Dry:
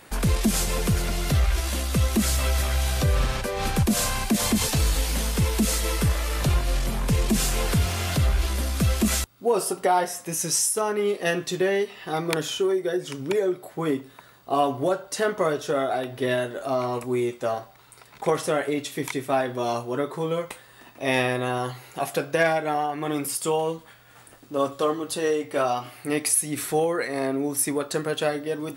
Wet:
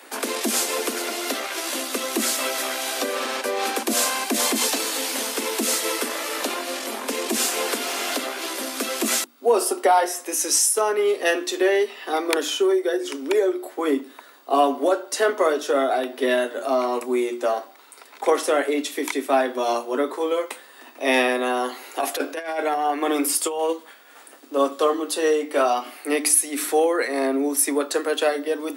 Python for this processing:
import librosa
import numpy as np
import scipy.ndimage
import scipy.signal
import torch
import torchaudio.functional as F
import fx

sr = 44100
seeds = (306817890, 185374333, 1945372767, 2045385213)

y = scipy.signal.sosfilt(scipy.signal.butter(16, 240.0, 'highpass', fs=sr, output='sos'), x)
y = fx.hum_notches(y, sr, base_hz=60, count=6)
y = fx.over_compress(y, sr, threshold_db=-26.0, ratio=-0.5, at=(21.72, 23.73))
y = F.gain(torch.from_numpy(y), 4.0).numpy()